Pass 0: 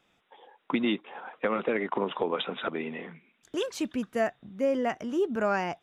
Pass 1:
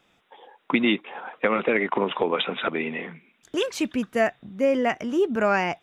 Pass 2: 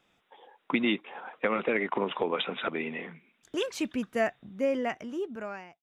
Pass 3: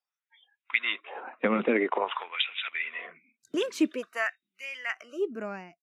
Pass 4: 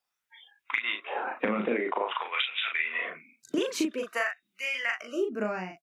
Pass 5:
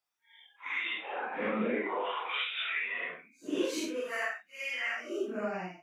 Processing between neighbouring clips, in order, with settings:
dynamic equaliser 2,300 Hz, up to +6 dB, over −49 dBFS, Q 2.2; level +5 dB
fade-out on the ending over 1.26 s; level −5.5 dB
noise reduction from a noise print of the clip's start 28 dB; auto-filter high-pass sine 0.49 Hz 200–2,600 Hz
downward compressor 6 to 1, threshold −34 dBFS, peak gain reduction 14 dB; double-tracking delay 38 ms −4 dB; level +7 dB
random phases in long frames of 200 ms; level −3.5 dB

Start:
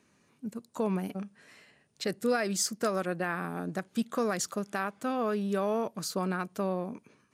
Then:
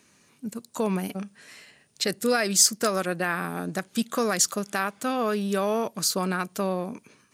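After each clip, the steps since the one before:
high-shelf EQ 2,400 Hz +9.5 dB
level +3.5 dB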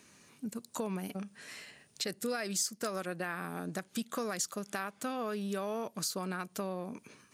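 downward compressor 2.5 to 1, threshold −38 dBFS, peak gain reduction 15.5 dB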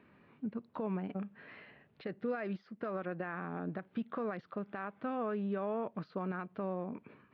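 brickwall limiter −26.5 dBFS, peak gain reduction 6.5 dB
Gaussian smoothing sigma 3.8 samples
level +1 dB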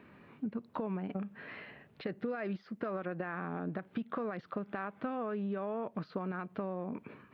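downward compressor, threshold −39 dBFS, peak gain reduction 8 dB
level +6 dB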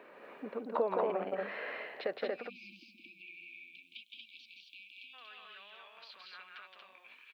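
high-pass filter sweep 520 Hz → 3,100 Hz, 0:01.95–0:03.89
time-frequency box erased 0:02.26–0:05.14, 360–2,200 Hz
loudspeakers that aren't time-aligned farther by 58 metres −3 dB, 80 metres −2 dB
level +2.5 dB

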